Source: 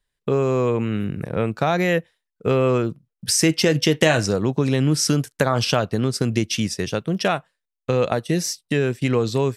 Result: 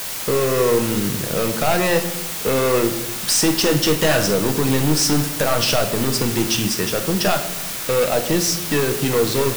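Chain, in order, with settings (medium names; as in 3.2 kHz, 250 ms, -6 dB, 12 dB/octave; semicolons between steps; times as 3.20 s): Butterworth band-stop 2.2 kHz, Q 5.8; bass shelf 190 Hz -10 dB; overload inside the chain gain 21 dB; added noise white -34 dBFS; reverberation RT60 0.90 s, pre-delay 6 ms, DRR 5.5 dB; trim +5.5 dB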